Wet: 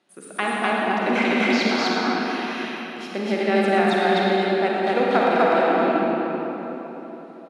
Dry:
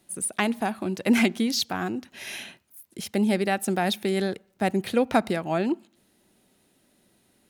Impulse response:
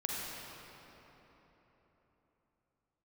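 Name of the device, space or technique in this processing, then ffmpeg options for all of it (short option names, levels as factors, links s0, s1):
station announcement: -filter_complex "[0:a]highpass=300,lowpass=3900,equalizer=f=1300:t=o:w=0.53:g=4.5,aecho=1:1:119.5|250.7:0.316|1[s0];[1:a]atrim=start_sample=2205[s1];[s0][s1]afir=irnorm=-1:irlink=0"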